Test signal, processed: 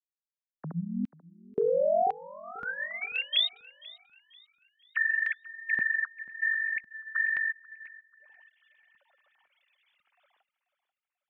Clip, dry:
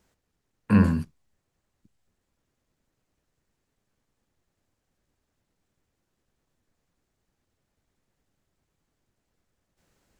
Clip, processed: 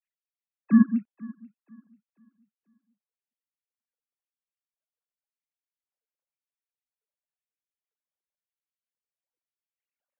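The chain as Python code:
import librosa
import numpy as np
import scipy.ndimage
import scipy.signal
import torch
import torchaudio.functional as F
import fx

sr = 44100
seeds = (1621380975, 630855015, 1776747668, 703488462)

y = fx.sine_speech(x, sr)
y = fx.dereverb_blind(y, sr, rt60_s=0.58)
y = fx.filter_lfo_highpass(y, sr, shape='square', hz=0.95, low_hz=210.0, high_hz=2400.0, q=1.8)
y = fx.echo_feedback(y, sr, ms=488, feedback_pct=42, wet_db=-14.5)
y = fx.upward_expand(y, sr, threshold_db=-38.0, expansion=1.5)
y = y * librosa.db_to_amplitude(-3.0)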